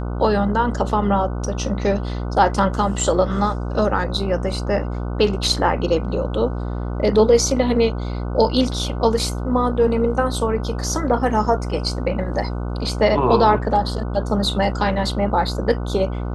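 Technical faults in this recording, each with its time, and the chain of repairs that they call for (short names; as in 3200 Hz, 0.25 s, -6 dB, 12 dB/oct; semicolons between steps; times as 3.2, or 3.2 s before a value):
buzz 60 Hz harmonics 25 -25 dBFS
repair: de-hum 60 Hz, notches 25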